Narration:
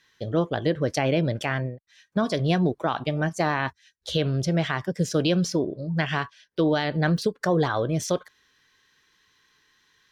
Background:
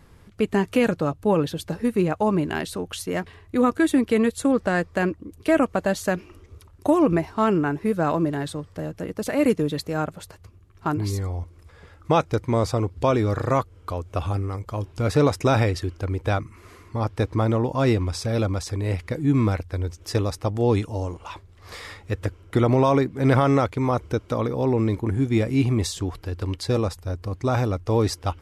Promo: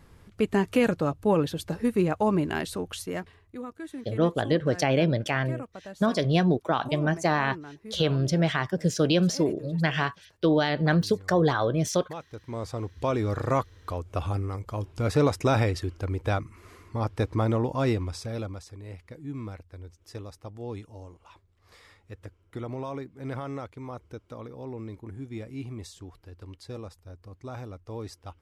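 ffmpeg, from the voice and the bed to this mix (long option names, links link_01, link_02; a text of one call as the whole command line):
ffmpeg -i stem1.wav -i stem2.wav -filter_complex "[0:a]adelay=3850,volume=0dB[link_01];[1:a]volume=13.5dB,afade=type=out:start_time=2.81:duration=0.82:silence=0.141254,afade=type=in:start_time=12.31:duration=1.2:silence=0.158489,afade=type=out:start_time=17.64:duration=1.07:silence=0.223872[link_02];[link_01][link_02]amix=inputs=2:normalize=0" out.wav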